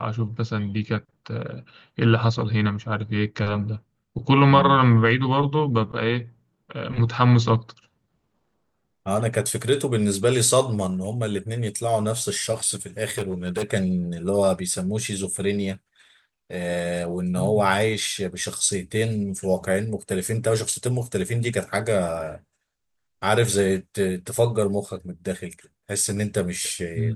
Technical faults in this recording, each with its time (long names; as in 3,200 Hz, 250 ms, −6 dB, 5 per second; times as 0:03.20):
0:13.04–0:13.64: clipping −21 dBFS